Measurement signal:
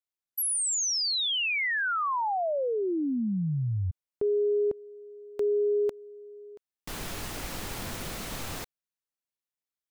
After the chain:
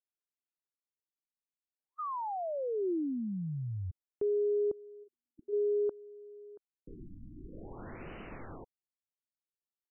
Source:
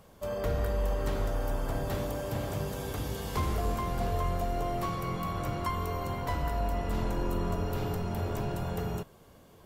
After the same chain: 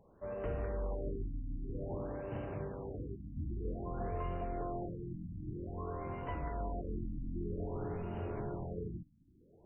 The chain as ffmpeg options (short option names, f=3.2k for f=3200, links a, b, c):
-af "equalizer=f=360:w=1.8:g=5.5,afftfilt=real='re*lt(b*sr/1024,300*pow(3100/300,0.5+0.5*sin(2*PI*0.52*pts/sr)))':imag='im*lt(b*sr/1024,300*pow(3100/300,0.5+0.5*sin(2*PI*0.52*pts/sr)))':win_size=1024:overlap=0.75,volume=-8.5dB"